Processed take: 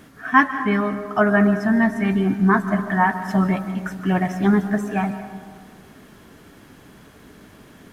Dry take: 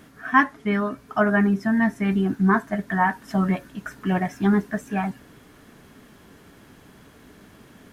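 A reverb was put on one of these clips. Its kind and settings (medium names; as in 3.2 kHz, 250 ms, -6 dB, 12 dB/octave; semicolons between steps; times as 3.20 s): algorithmic reverb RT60 1.8 s, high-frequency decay 0.35×, pre-delay 100 ms, DRR 10 dB; trim +2.5 dB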